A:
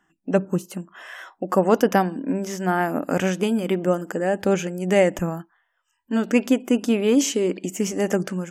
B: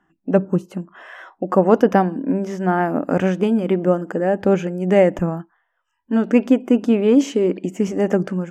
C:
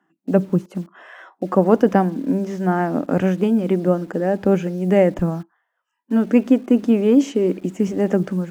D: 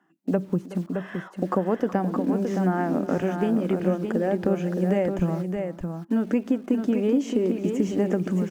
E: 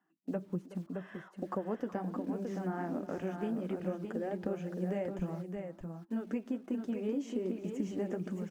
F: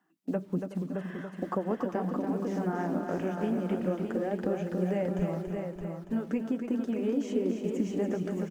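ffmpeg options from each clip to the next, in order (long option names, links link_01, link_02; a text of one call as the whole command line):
ffmpeg -i in.wav -af "lowpass=frequency=1200:poles=1,volume=4.5dB" out.wav
ffmpeg -i in.wav -filter_complex "[0:a]lowshelf=frequency=310:gain=5.5,acrossover=split=170|1400[link_01][link_02][link_03];[link_01]acrusher=bits=7:mix=0:aa=0.000001[link_04];[link_04][link_02][link_03]amix=inputs=3:normalize=0,volume=-3dB" out.wav
ffmpeg -i in.wav -filter_complex "[0:a]acompressor=threshold=-21dB:ratio=4,asplit=2[link_01][link_02];[link_02]aecho=0:1:371|618:0.15|0.501[link_03];[link_01][link_03]amix=inputs=2:normalize=0" out.wav
ffmpeg -i in.wav -af "flanger=delay=0.9:depth=8.3:regen=-43:speed=1.3:shape=triangular,volume=-8.5dB" out.wav
ffmpeg -i in.wav -af "aecho=1:1:283|566|849|1132:0.473|0.175|0.0648|0.024,volume=5dB" out.wav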